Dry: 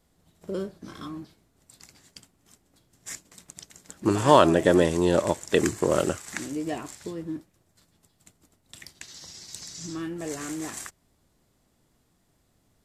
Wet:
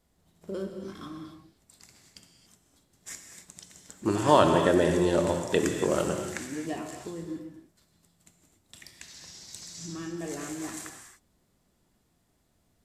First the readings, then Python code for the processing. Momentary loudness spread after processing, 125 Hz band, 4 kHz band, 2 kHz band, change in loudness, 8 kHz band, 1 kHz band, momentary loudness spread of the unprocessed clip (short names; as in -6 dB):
22 LU, -2.5 dB, -2.5 dB, -2.5 dB, -2.5 dB, -2.5 dB, -2.5 dB, 22 LU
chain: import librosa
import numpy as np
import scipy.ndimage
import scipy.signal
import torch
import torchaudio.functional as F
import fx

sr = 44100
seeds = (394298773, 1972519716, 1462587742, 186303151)

y = fx.rev_gated(x, sr, seeds[0], gate_ms=310, shape='flat', drr_db=4.0)
y = F.gain(torch.from_numpy(y), -4.0).numpy()